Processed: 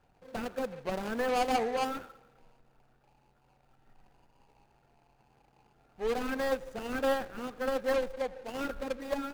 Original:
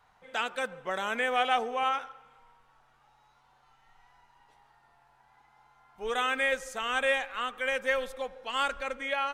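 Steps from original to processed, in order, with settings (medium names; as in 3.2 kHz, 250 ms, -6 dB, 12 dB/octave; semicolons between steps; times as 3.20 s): median filter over 41 samples; trim +4.5 dB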